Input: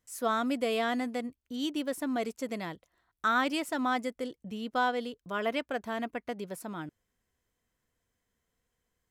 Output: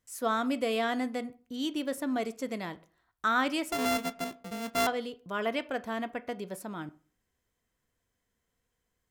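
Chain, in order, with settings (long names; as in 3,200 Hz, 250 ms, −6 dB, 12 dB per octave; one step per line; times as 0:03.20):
0:03.72–0:04.87: samples sorted by size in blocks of 64 samples
on a send: convolution reverb RT60 0.40 s, pre-delay 13 ms, DRR 13.5 dB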